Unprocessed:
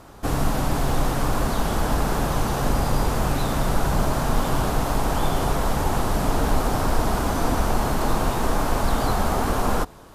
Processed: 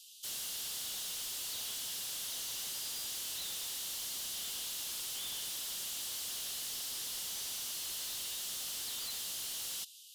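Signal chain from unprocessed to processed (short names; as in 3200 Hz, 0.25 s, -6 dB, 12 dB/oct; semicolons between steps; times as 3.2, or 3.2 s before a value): steep high-pass 2800 Hz 96 dB/oct; in parallel at -10 dB: sine folder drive 14 dB, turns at -24.5 dBFS; on the sum: gain -7.5 dB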